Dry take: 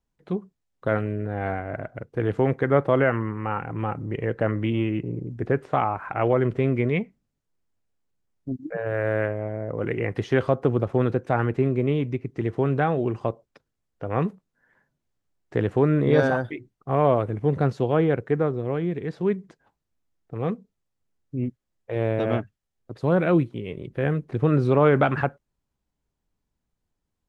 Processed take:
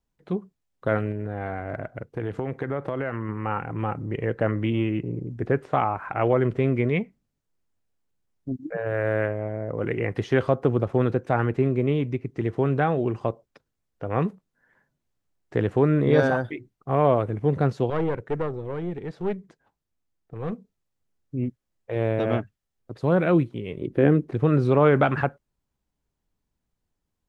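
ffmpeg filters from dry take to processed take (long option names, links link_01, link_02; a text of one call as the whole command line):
ffmpeg -i in.wav -filter_complex "[0:a]asettb=1/sr,asplit=3[link_01][link_02][link_03];[link_01]atrim=end=1.114[link_04];[link_02]atrim=start=1.11:end=3.29,asetpts=PTS-STARTPTS,afade=type=in:duration=0.004:curve=qsin,afade=type=out:start_time=2.176:duration=0.004:curve=qsin,acompressor=threshold=-24dB:ratio=6:attack=3.2:release=140:knee=1:detection=peak[link_05];[link_03]atrim=start=3.286[link_06];[link_04][link_05]acrossfade=duration=0.004:curve1=hsin:curve2=qsin[link_07];[link_07][link_06]acrossfade=duration=0.004:curve1=qsin:curve2=hsin,asettb=1/sr,asplit=3[link_08][link_09][link_10];[link_08]atrim=end=17.904[link_11];[link_09]atrim=start=17.9:end=20.53,asetpts=PTS-STARTPTS,afade=type=in:duration=0.004:curve=qsin,afade=type=out:start_time=2.626:duration=0.004:curve=qsin,aeval=exprs='(tanh(7.94*val(0)+0.6)-tanh(0.6))/7.94':channel_layout=same[link_12];[link_10]atrim=start=20.526[link_13];[link_11][link_12]acrossfade=duration=0.004:curve1=hsin:curve2=qsin[link_14];[link_14][link_13]acrossfade=duration=0.004:curve1=qsin:curve2=hsin,asettb=1/sr,asplit=3[link_15][link_16][link_17];[link_15]atrim=end=23.824[link_18];[link_16]atrim=start=23.82:end=24.31,asetpts=PTS-STARTPTS,afade=type=in:duration=0.004:curve=qsin,afade=type=out:start_time=0.486:duration=0.004:curve=qsin,equalizer=frequency=310:width=1.2:gain=12[link_19];[link_17]atrim=start=24.306[link_20];[link_18][link_19]acrossfade=duration=0.004:curve1=hsin:curve2=qsin[link_21];[link_21][link_20]acrossfade=duration=0.004:curve1=qsin:curve2=hsin" out.wav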